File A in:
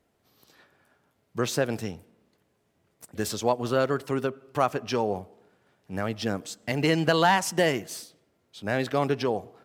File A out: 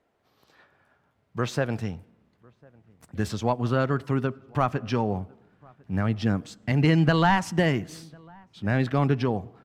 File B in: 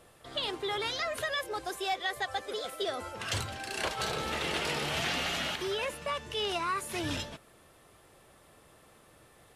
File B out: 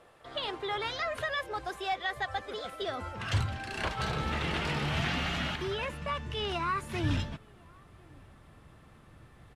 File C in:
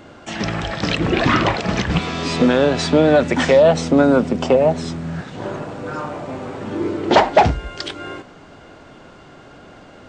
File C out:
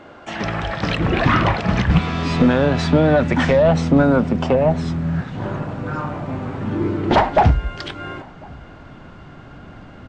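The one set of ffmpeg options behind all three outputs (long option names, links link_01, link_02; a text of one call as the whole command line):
ffmpeg -i in.wav -filter_complex "[0:a]asplit=2[link_01][link_02];[link_02]highpass=frequency=720:poles=1,volume=11dB,asoftclip=type=tanh:threshold=-1dB[link_03];[link_01][link_03]amix=inputs=2:normalize=0,lowpass=frequency=1300:poles=1,volume=-6dB,asubboost=boost=9:cutoff=170,asplit=2[link_04][link_05];[link_05]adelay=1050,volume=-27dB,highshelf=frequency=4000:gain=-23.6[link_06];[link_04][link_06]amix=inputs=2:normalize=0,volume=-1dB" out.wav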